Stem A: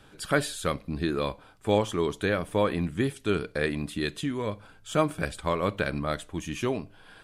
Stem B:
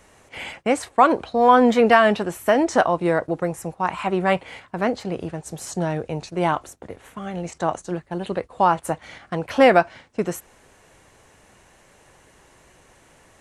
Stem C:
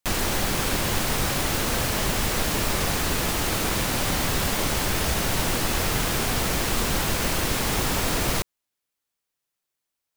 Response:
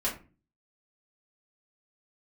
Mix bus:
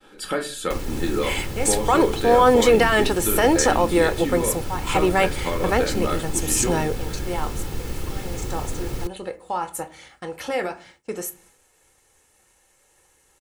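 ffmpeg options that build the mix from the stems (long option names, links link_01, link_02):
-filter_complex "[0:a]acompressor=threshold=-27dB:ratio=4,lowshelf=frequency=150:width_type=q:width=1.5:gain=-9,volume=-1dB,asplit=3[link_01][link_02][link_03];[link_02]volume=-4.5dB[link_04];[1:a]aemphasis=mode=production:type=75kf,alimiter=limit=-10dB:level=0:latency=1:release=17,adelay=900,volume=0.5dB,asplit=2[link_05][link_06];[link_06]volume=-21.5dB[link_07];[2:a]acrossover=split=400[link_08][link_09];[link_09]acompressor=threshold=-40dB:ratio=3[link_10];[link_08][link_10]amix=inputs=2:normalize=0,adelay=650,volume=-3dB,asplit=2[link_11][link_12];[link_12]volume=-23.5dB[link_13];[link_03]apad=whole_len=630701[link_14];[link_05][link_14]sidechaingate=range=-11dB:threshold=-50dB:ratio=16:detection=peak[link_15];[3:a]atrim=start_sample=2205[link_16];[link_04][link_07][link_13]amix=inputs=3:normalize=0[link_17];[link_17][link_16]afir=irnorm=-1:irlink=0[link_18];[link_01][link_15][link_11][link_18]amix=inputs=4:normalize=0,agate=range=-33dB:threshold=-51dB:ratio=3:detection=peak,aecho=1:1:2.3:0.44"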